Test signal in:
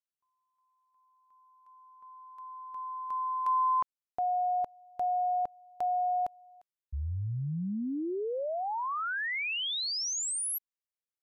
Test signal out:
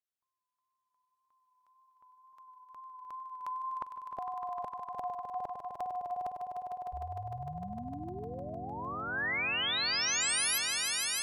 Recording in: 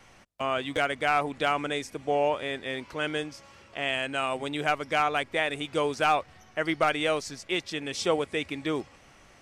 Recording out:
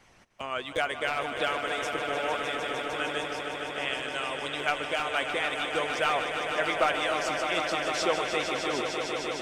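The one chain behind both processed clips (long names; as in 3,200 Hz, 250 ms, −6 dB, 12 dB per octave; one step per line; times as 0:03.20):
tape wow and flutter 28 cents
harmonic and percussive parts rebalanced harmonic −11 dB
echo that builds up and dies away 152 ms, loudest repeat 5, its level −8.5 dB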